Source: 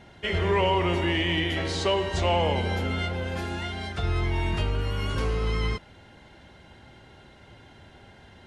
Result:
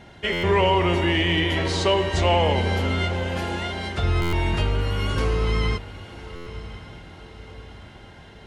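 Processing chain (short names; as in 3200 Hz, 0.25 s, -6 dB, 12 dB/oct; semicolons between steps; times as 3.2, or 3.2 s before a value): diffused feedback echo 1.02 s, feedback 47%, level -15 dB; stuck buffer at 0.32/4.21/6.35, samples 512, times 9; gain +4 dB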